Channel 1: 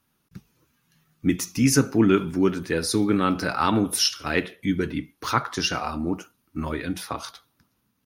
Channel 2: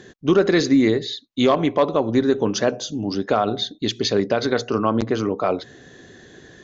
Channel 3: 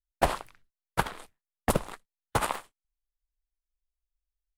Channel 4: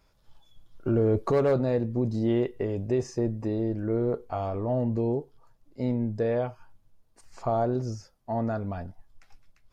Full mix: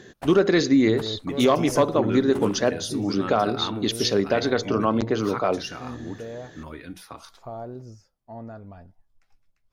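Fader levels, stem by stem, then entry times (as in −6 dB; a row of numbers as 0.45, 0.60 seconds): −10.0, −2.0, −13.5, −10.0 decibels; 0.00, 0.00, 0.00, 0.00 seconds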